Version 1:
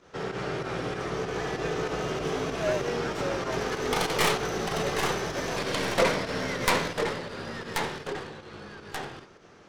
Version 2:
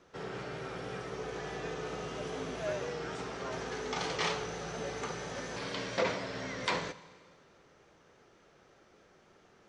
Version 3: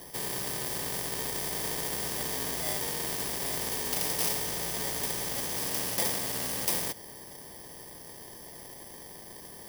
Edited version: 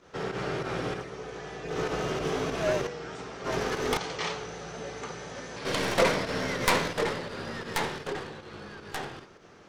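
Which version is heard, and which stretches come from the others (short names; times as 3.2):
1
1.01–1.71 from 2, crossfade 0.16 s
2.87–3.44 from 2
3.97–5.65 from 2
not used: 3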